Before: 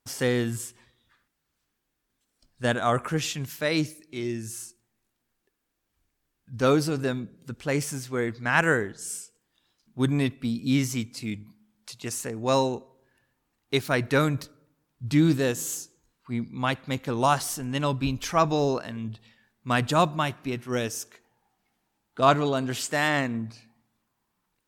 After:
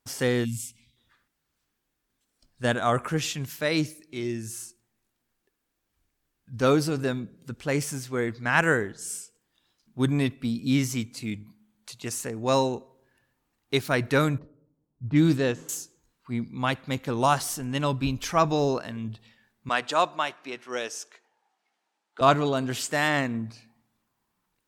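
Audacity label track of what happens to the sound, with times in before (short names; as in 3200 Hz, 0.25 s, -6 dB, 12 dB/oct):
0.450000	0.970000	spectral gain 300–2000 Hz -24 dB
11.040000	12.010000	notch 5200 Hz, Q 11
14.380000	15.690000	low-pass opened by the level closes to 500 Hz, open at -16 dBFS
19.690000	22.210000	BPF 480–7300 Hz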